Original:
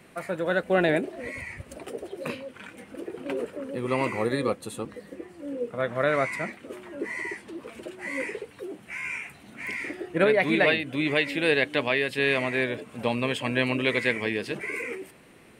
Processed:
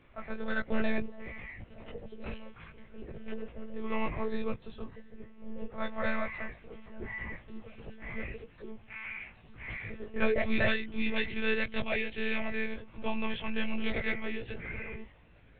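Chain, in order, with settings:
one-pitch LPC vocoder at 8 kHz 220 Hz
multi-voice chorus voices 6, 0.13 Hz, delay 18 ms, depth 1 ms
level −4.5 dB

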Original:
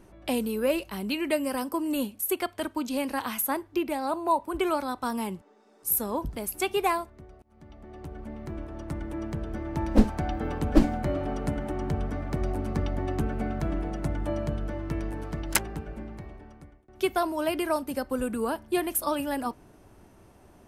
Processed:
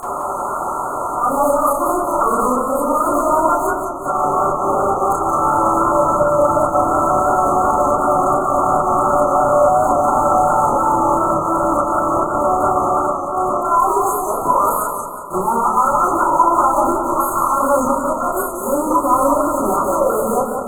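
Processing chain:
played backwards from end to start
noise gate −49 dBFS, range −16 dB
high-pass filter 690 Hz 12 dB per octave
parametric band 1,300 Hz +8 dB 0.5 octaves
in parallel at +2 dB: upward compression, threshold −33 dBFS
on the sum: volume swells 274 ms
fuzz pedal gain 48 dB, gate −53 dBFS
linear-phase brick-wall band-stop 1,400–6,400 Hz
delay with a low-pass on its return 320 ms, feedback 50%, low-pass 1,200 Hz, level −12.5 dB
convolution reverb RT60 0.40 s, pre-delay 27 ms, DRR −13.5 dB
feedback echo with a swinging delay time 182 ms, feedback 44%, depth 97 cents, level −6 dB
level −14.5 dB

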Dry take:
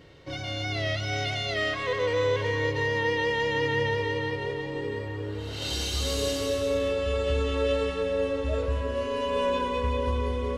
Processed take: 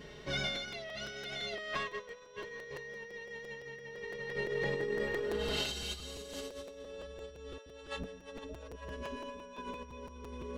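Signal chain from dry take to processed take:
compressor whose output falls as the input rises −34 dBFS, ratio −0.5
steady tone 5,700 Hz −64 dBFS
comb filter 4.8 ms, depth 100%
0:07.58–0:09.58: multiband delay without the direct sound highs, lows 80 ms, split 460 Hz
regular buffer underruns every 0.17 s, samples 256, repeat, from 0:00.55
level −7 dB

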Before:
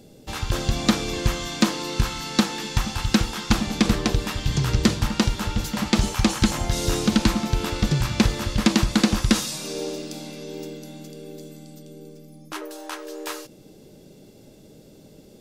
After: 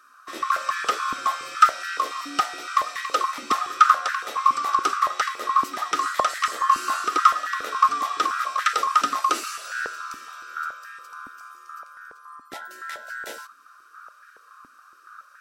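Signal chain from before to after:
neighbouring bands swapped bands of 1,000 Hz
high-pass on a step sequencer 7.1 Hz 270–1,700 Hz
level −6 dB

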